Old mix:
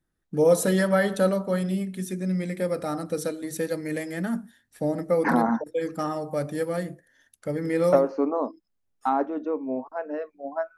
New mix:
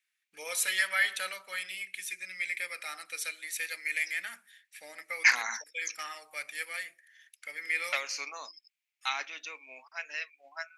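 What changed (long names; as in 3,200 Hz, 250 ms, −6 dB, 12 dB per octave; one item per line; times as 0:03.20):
second voice: remove low-pass filter 1,500 Hz 12 dB per octave
master: add high-pass with resonance 2,300 Hz, resonance Q 4.9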